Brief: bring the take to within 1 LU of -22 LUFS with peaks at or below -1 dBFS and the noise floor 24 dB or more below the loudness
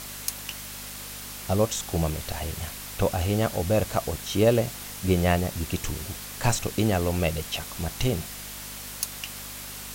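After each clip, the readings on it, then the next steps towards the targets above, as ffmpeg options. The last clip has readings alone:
hum 50 Hz; harmonics up to 250 Hz; hum level -47 dBFS; noise floor -39 dBFS; noise floor target -52 dBFS; loudness -28.0 LUFS; peak -8.5 dBFS; loudness target -22.0 LUFS
-> -af "bandreject=f=50:t=h:w=4,bandreject=f=100:t=h:w=4,bandreject=f=150:t=h:w=4,bandreject=f=200:t=h:w=4,bandreject=f=250:t=h:w=4"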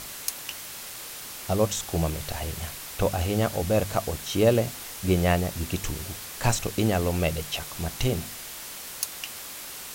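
hum none; noise floor -39 dBFS; noise floor target -52 dBFS
-> -af "afftdn=nr=13:nf=-39"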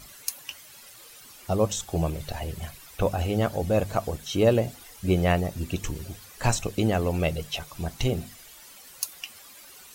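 noise floor -49 dBFS; noise floor target -52 dBFS
-> -af "afftdn=nr=6:nf=-49"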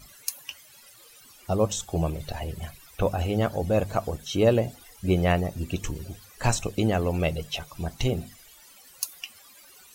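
noise floor -52 dBFS; loudness -27.5 LUFS; peak -9.0 dBFS; loudness target -22.0 LUFS
-> -af "volume=5.5dB"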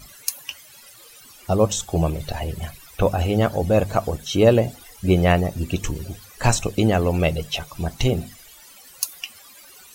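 loudness -22.0 LUFS; peak -3.5 dBFS; noise floor -47 dBFS

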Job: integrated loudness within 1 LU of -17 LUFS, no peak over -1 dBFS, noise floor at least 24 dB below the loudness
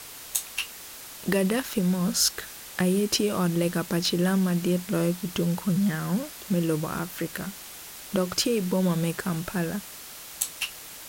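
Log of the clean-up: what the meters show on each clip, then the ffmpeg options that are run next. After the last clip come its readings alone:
noise floor -43 dBFS; noise floor target -51 dBFS; loudness -26.5 LUFS; peak -7.0 dBFS; loudness target -17.0 LUFS
-> -af "afftdn=nr=8:nf=-43"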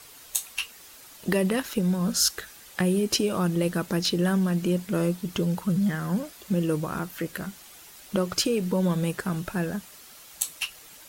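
noise floor -49 dBFS; noise floor target -51 dBFS
-> -af "afftdn=nr=6:nf=-49"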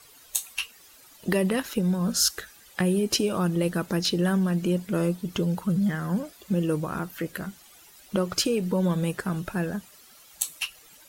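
noise floor -53 dBFS; loudness -27.0 LUFS; peak -7.0 dBFS; loudness target -17.0 LUFS
-> -af "volume=10dB,alimiter=limit=-1dB:level=0:latency=1"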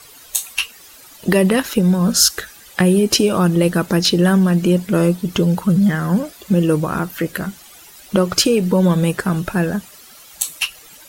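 loudness -17.0 LUFS; peak -1.0 dBFS; noise floor -43 dBFS

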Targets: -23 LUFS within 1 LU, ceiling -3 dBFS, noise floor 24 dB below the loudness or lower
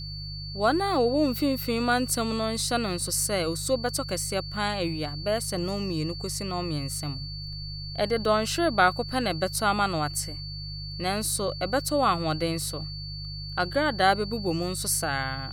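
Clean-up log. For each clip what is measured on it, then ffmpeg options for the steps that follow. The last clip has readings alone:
hum 50 Hz; harmonics up to 150 Hz; hum level -36 dBFS; steady tone 4500 Hz; tone level -38 dBFS; loudness -27.0 LUFS; peak -7.5 dBFS; loudness target -23.0 LUFS
-> -af "bandreject=f=50:t=h:w=4,bandreject=f=100:t=h:w=4,bandreject=f=150:t=h:w=4"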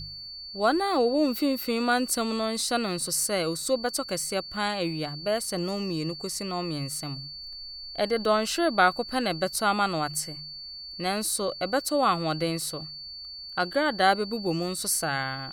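hum none; steady tone 4500 Hz; tone level -38 dBFS
-> -af "bandreject=f=4.5k:w=30"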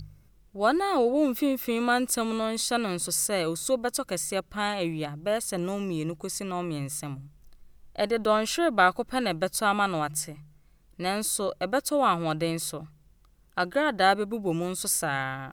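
steady tone none; loudness -27.0 LUFS; peak -8.0 dBFS; loudness target -23.0 LUFS
-> -af "volume=4dB"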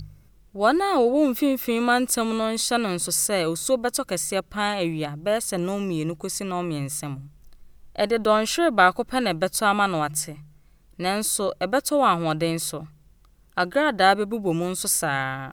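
loudness -23.0 LUFS; peak -4.0 dBFS; noise floor -55 dBFS

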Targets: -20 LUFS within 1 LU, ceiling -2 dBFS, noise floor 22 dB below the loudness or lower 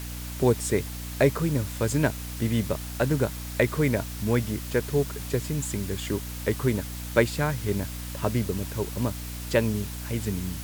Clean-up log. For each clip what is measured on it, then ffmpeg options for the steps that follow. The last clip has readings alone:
hum 60 Hz; harmonics up to 300 Hz; hum level -34 dBFS; noise floor -36 dBFS; noise floor target -50 dBFS; loudness -27.5 LUFS; peak -7.0 dBFS; loudness target -20.0 LUFS
-> -af "bandreject=f=60:t=h:w=4,bandreject=f=120:t=h:w=4,bandreject=f=180:t=h:w=4,bandreject=f=240:t=h:w=4,bandreject=f=300:t=h:w=4"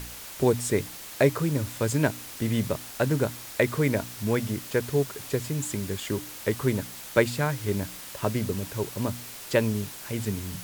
hum none; noise floor -41 dBFS; noise floor target -50 dBFS
-> -af "afftdn=nr=9:nf=-41"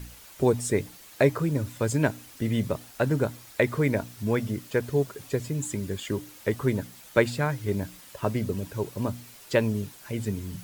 noise floor -49 dBFS; noise floor target -50 dBFS
-> -af "afftdn=nr=6:nf=-49"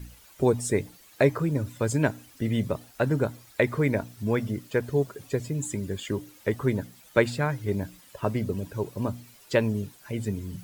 noise floor -54 dBFS; loudness -28.0 LUFS; peak -6.5 dBFS; loudness target -20.0 LUFS
-> -af "volume=8dB,alimiter=limit=-2dB:level=0:latency=1"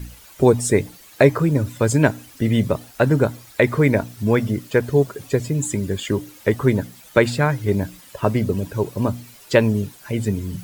loudness -20.5 LUFS; peak -2.0 dBFS; noise floor -46 dBFS

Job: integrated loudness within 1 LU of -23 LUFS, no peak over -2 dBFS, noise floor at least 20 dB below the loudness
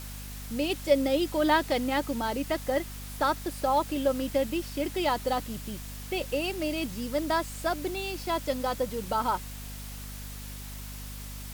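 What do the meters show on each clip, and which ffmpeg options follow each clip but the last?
hum 50 Hz; harmonics up to 250 Hz; hum level -39 dBFS; noise floor -40 dBFS; noise floor target -50 dBFS; loudness -29.5 LUFS; peak -9.5 dBFS; loudness target -23.0 LUFS
-> -af "bandreject=f=50:t=h:w=6,bandreject=f=100:t=h:w=6,bandreject=f=150:t=h:w=6,bandreject=f=200:t=h:w=6,bandreject=f=250:t=h:w=6"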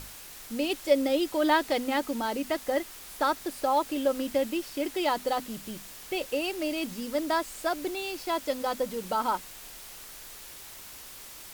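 hum none; noise floor -46 dBFS; noise floor target -50 dBFS
-> -af "afftdn=nr=6:nf=-46"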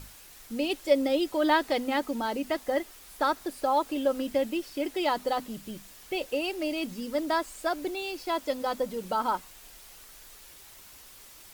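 noise floor -51 dBFS; loudness -29.5 LUFS; peak -10.0 dBFS; loudness target -23.0 LUFS
-> -af "volume=6.5dB"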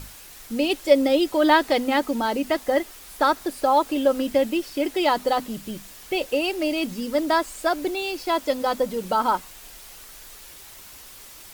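loudness -23.0 LUFS; peak -3.5 dBFS; noise floor -44 dBFS

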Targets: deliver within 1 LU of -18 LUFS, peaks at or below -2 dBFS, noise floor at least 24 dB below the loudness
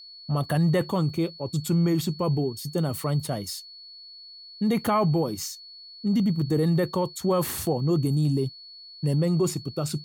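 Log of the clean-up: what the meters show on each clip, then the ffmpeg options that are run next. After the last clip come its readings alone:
steady tone 4400 Hz; tone level -43 dBFS; loudness -26.0 LUFS; peak -13.0 dBFS; loudness target -18.0 LUFS
-> -af "bandreject=f=4.4k:w=30"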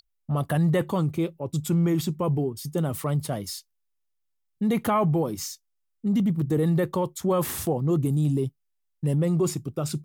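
steady tone none; loudness -26.0 LUFS; peak -13.0 dBFS; loudness target -18.0 LUFS
-> -af "volume=8dB"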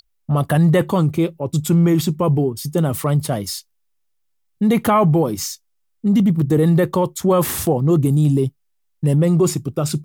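loudness -18.0 LUFS; peak -5.0 dBFS; noise floor -67 dBFS

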